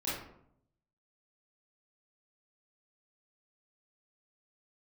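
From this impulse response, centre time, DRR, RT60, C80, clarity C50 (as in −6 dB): 61 ms, −10.0 dB, 0.70 s, 5.0 dB, 0.0 dB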